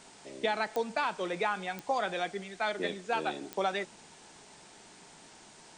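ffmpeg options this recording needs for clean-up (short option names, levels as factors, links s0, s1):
-af "adeclick=t=4,afftdn=nr=24:nf=-55"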